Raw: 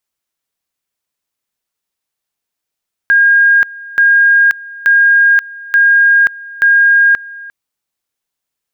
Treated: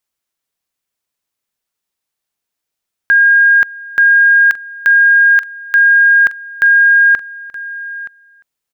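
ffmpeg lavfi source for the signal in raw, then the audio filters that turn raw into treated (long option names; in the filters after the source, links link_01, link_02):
-f lavfi -i "aevalsrc='pow(10,(-5-21.5*gte(mod(t,0.88),0.53))/20)*sin(2*PI*1620*t)':duration=4.4:sample_rate=44100"
-af "aecho=1:1:923:0.141"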